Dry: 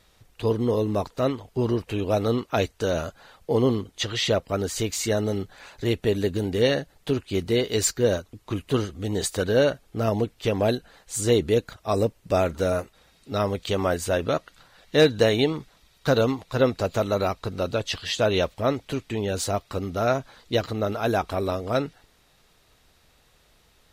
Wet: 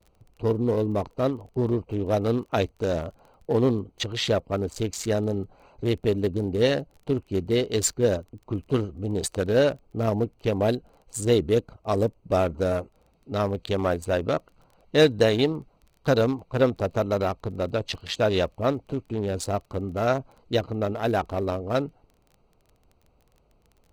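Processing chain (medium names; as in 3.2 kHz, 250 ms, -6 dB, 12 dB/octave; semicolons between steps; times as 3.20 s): local Wiener filter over 25 samples; crackle 16 per s -42 dBFS; gate with hold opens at -54 dBFS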